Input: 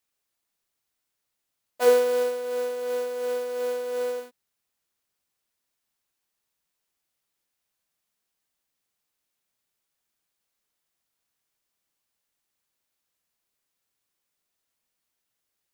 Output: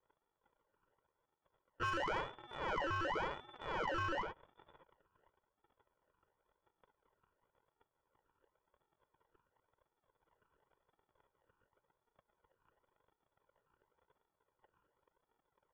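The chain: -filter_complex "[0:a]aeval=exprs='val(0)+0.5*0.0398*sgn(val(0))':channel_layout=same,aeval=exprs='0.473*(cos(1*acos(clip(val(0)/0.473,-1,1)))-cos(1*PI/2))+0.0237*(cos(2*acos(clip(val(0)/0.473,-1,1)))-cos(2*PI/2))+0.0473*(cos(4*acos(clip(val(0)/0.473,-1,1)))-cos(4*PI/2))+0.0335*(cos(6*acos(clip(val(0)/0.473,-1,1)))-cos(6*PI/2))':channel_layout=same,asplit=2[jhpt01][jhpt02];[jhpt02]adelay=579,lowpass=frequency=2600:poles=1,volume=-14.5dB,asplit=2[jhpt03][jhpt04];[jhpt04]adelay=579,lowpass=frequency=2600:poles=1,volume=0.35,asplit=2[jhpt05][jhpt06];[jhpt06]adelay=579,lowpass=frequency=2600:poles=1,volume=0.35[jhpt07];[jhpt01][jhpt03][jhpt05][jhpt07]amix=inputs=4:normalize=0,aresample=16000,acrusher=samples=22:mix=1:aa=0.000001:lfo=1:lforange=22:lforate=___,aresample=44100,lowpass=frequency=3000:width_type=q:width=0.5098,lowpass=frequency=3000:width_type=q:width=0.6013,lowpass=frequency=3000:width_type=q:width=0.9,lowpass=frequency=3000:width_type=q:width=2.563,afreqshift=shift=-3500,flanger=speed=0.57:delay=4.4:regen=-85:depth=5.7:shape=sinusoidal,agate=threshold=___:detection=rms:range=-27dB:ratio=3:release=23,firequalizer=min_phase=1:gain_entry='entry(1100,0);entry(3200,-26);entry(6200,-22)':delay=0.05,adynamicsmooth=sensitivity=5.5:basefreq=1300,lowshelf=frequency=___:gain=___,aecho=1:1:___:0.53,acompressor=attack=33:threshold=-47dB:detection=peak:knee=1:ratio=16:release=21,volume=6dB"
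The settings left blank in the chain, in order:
0.93, -37dB, 440, 4.5, 2.1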